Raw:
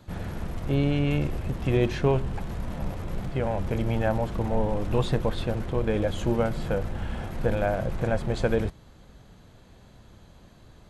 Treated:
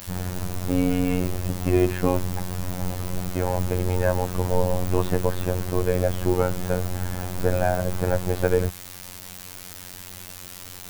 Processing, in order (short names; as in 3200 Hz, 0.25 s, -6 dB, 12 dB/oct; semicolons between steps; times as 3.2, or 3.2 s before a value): LPF 2100 Hz; added noise white -44 dBFS; robotiser 90.5 Hz; gain +5.5 dB